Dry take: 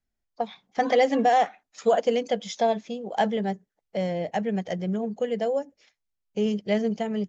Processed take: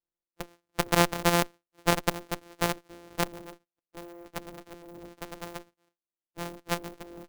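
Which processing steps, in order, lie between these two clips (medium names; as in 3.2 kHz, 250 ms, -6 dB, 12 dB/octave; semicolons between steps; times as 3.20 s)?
sorted samples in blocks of 256 samples; resonant low shelf 210 Hz -8.5 dB, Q 1.5; Chebyshev shaper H 3 -8 dB, 4 -24 dB, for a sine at -7.5 dBFS; trim +3 dB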